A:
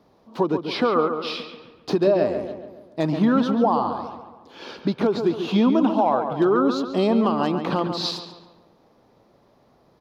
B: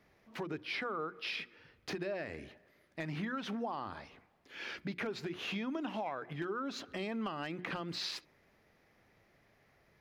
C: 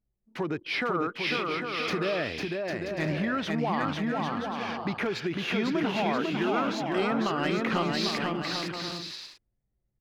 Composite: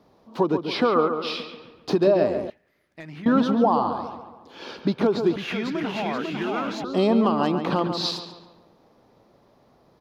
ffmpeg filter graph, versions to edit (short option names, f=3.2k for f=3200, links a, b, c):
-filter_complex "[0:a]asplit=3[a][b][c];[a]atrim=end=2.502[d];[1:a]atrim=start=2.498:end=3.262[e];[b]atrim=start=3.258:end=5.362[f];[2:a]atrim=start=5.358:end=6.842[g];[c]atrim=start=6.838[h];[d][e]acrossfade=d=0.004:c1=hsin:c2=hsin[i];[i][f]acrossfade=d=0.004:c1=hsin:c2=hsin[j];[j][g]acrossfade=d=0.004:c1=hsin:c2=hsin[k];[k][h]acrossfade=d=0.004:c1=hsin:c2=hsin"